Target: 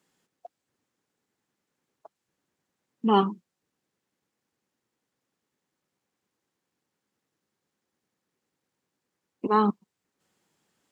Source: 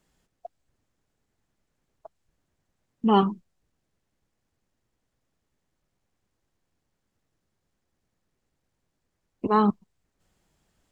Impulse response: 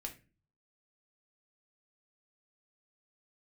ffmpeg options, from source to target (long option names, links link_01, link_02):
-af "highpass=200,equalizer=frequency=650:width=5.9:gain=-6.5"